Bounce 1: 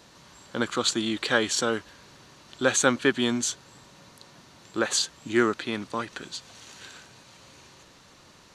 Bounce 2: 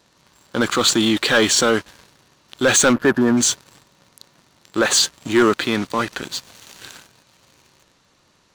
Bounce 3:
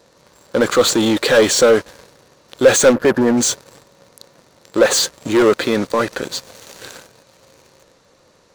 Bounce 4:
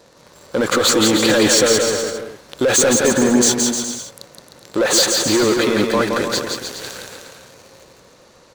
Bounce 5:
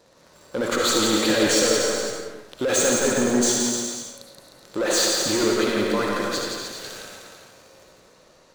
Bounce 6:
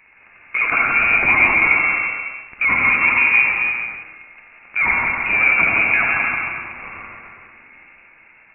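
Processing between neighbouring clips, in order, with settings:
gain on a spectral selection 0:02.93–0:03.37, 1,800–11,000 Hz −28 dB; transient designer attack −3 dB, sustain +2 dB; leveller curve on the samples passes 3
parametric band 3,000 Hz −4 dB 0.55 octaves; soft clipping −15.5 dBFS, distortion −12 dB; parametric band 510 Hz +11 dB 0.62 octaves; level +3.5 dB
brickwall limiter −13 dBFS, peak gain reduction 12 dB; on a send: bouncing-ball delay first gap 170 ms, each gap 0.8×, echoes 5; on the sum: level +3 dB
convolution reverb RT60 0.55 s, pre-delay 30 ms, DRR 0.5 dB; level −8 dB
voice inversion scrambler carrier 2,700 Hz; level +6 dB

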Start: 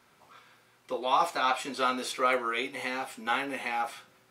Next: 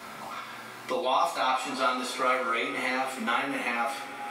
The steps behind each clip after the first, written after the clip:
coupled-rooms reverb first 0.32 s, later 3.5 s, from −22 dB, DRR −5 dB
multiband upward and downward compressor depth 70%
level −4.5 dB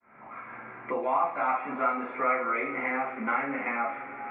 fade in at the beginning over 0.55 s
Chebyshev low-pass filter 2,300 Hz, order 5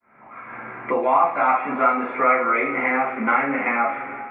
automatic gain control gain up to 9 dB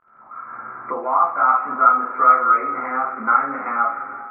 surface crackle 67 per second −35 dBFS
transistor ladder low-pass 1,400 Hz, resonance 75%
level +4.5 dB

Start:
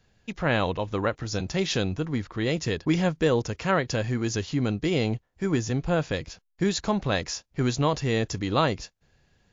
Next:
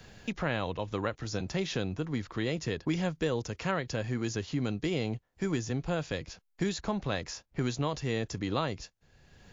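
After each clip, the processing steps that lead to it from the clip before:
multiband upward and downward compressor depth 70%
level −7 dB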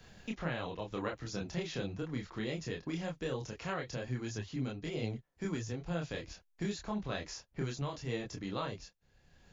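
multi-voice chorus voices 4, 0.77 Hz, delay 27 ms, depth 3.8 ms
speech leveller within 3 dB 0.5 s
level −3 dB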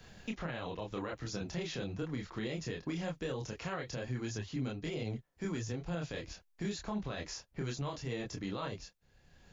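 brickwall limiter −29.5 dBFS, peak gain reduction 10 dB
level +1.5 dB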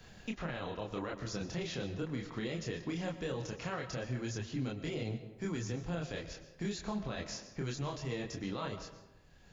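convolution reverb RT60 1.1 s, pre-delay 80 ms, DRR 10.5 dB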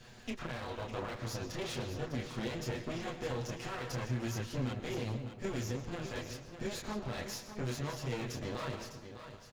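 lower of the sound and its delayed copy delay 8.2 ms
on a send: single-tap delay 604 ms −10 dB
on the sum: level +2 dB

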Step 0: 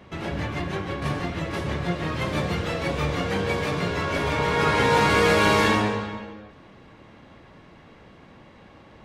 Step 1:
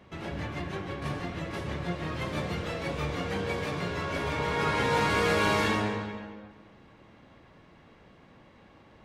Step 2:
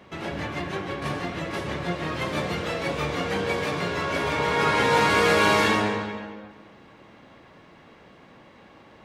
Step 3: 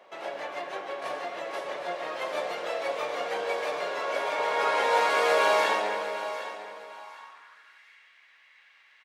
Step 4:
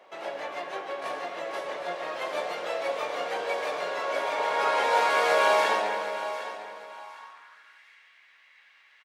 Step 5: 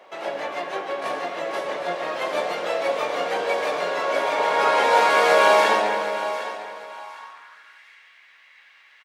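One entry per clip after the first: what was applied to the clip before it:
bucket-brigade delay 230 ms, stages 4,096, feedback 34%, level −14 dB; level −6.5 dB
low-shelf EQ 120 Hz −11 dB; level +6.5 dB
repeating echo 756 ms, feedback 27%, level −12 dB; high-pass filter sweep 600 Hz → 2,000 Hz, 0:06.81–0:07.89; level −6 dB
double-tracking delay 18 ms −11 dB
dynamic equaliser 210 Hz, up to +5 dB, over −45 dBFS, Q 0.91; level +5.5 dB

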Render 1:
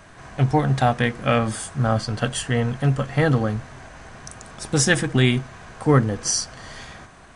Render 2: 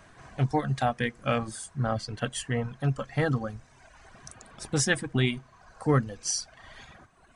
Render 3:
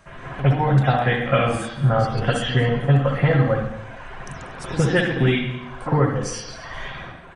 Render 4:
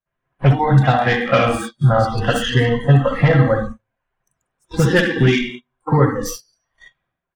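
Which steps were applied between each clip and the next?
reverb reduction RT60 1.3 s; level −6.5 dB
downward compressor, threshold −30 dBFS, peak gain reduction 12 dB; repeating echo 236 ms, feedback 38%, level −20 dB; convolution reverb RT60 0.80 s, pre-delay 57 ms, DRR −16 dB
stylus tracing distortion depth 0.049 ms; noise gate −28 dBFS, range −24 dB; noise reduction from a noise print of the clip's start 21 dB; level +4.5 dB

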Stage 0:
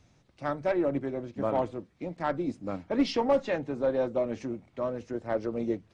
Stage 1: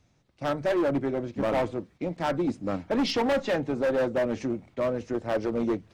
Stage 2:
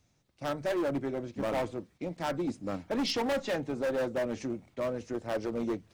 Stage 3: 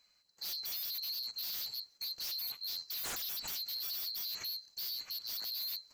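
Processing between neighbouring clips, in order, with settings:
noise gate −55 dBFS, range −9 dB; gain into a clipping stage and back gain 27 dB; level +5.5 dB
high-shelf EQ 5,700 Hz +10.5 dB; level −5.5 dB
neighbouring bands swapped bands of 4,000 Hz; wave folding −34 dBFS

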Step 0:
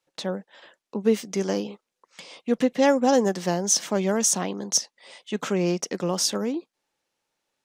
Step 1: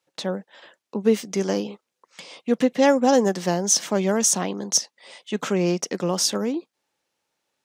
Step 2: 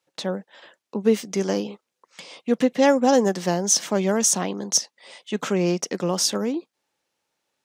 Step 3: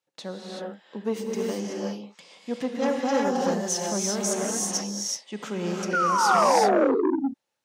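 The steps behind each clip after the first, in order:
high-pass filter 55 Hz; level +2 dB
no processing that can be heard
sound drawn into the spectrogram fall, 0:05.93–0:06.95, 250–1,500 Hz −14 dBFS; convolution reverb, pre-delay 3 ms, DRR −2.5 dB; saturating transformer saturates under 910 Hz; level −9 dB

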